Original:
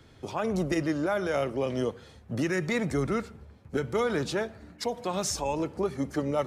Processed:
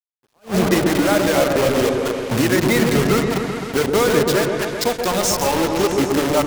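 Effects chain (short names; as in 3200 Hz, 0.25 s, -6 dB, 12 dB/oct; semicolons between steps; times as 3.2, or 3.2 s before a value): reverse delay 0.141 s, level -5.5 dB; in parallel at -3 dB: compressor 4:1, threshold -36 dBFS, peak gain reduction 12 dB; on the sum: reverb removal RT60 1.5 s; bit-crush 5-bit; on a send: repeats that get brighter 0.129 s, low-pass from 750 Hz, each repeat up 1 oct, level -3 dB; on the sum: attack slew limiter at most 290 dB/s; gain +8 dB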